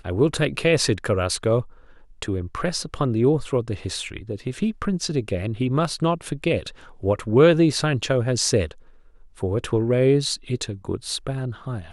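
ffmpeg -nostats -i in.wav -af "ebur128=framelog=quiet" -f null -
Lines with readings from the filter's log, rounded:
Integrated loudness:
  I:         -22.9 LUFS
  Threshold: -33.2 LUFS
Loudness range:
  LRA:         4.5 LU
  Threshold: -43.1 LUFS
  LRA low:   -25.5 LUFS
  LRA high:  -20.9 LUFS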